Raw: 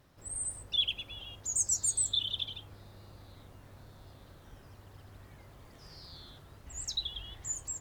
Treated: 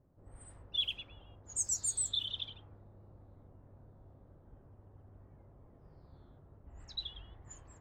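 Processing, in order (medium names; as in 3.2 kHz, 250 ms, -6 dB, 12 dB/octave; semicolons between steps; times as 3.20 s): level-controlled noise filter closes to 580 Hz, open at -27 dBFS; trim -4 dB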